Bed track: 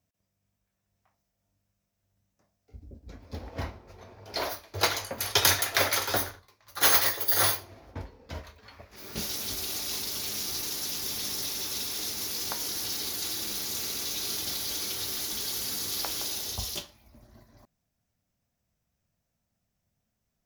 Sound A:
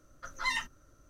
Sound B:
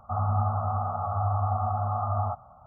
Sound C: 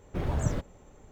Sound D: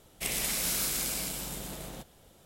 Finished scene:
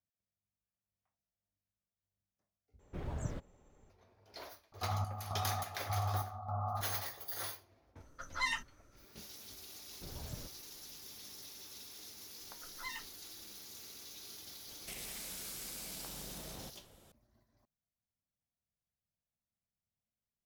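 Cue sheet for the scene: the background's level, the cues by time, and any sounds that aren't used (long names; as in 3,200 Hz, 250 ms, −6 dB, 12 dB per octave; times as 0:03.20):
bed track −18 dB
0:02.79: overwrite with C −11 dB
0:04.72: mix in B −9 dB + square-wave tremolo 1.7 Hz, depth 65%, duty 55%
0:07.96: mix in A −3 dB
0:09.87: mix in C −18 dB
0:12.39: mix in A −13 dB
0:14.67: mix in D −3.5 dB + downward compressor, threshold −40 dBFS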